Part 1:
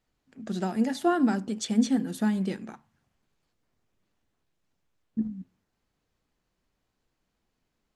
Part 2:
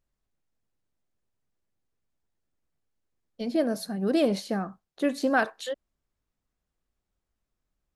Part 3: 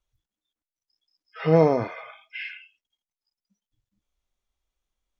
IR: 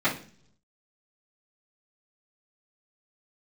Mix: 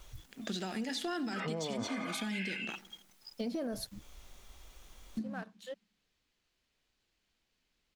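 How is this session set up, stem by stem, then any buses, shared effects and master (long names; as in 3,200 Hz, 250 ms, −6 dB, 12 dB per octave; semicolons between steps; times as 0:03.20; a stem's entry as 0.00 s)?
−4.0 dB, 0.00 s, bus A, no send, echo send −17 dB, meter weighting curve D
−2.0 dB, 0.00 s, muted 0:03.87–0:05.15, bus A, no send, no echo send, automatic ducking −21 dB, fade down 1.55 s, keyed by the first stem
−12.5 dB, 0.00 s, no bus, no send, no echo send, envelope flattener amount 70%
bus A: 0.0 dB, leveller curve on the samples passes 1; brickwall limiter −23 dBFS, peak gain reduction 9 dB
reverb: not used
echo: repeating echo 89 ms, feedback 55%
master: downward compressor 6 to 1, threshold −34 dBFS, peak gain reduction 11 dB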